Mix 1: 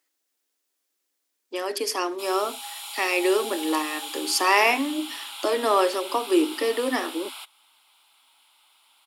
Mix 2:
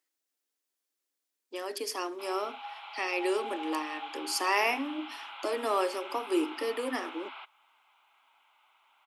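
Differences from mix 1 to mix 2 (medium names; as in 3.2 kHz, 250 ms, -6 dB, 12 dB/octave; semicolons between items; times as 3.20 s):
speech -8.0 dB; background: add low-pass 2.4 kHz 24 dB/octave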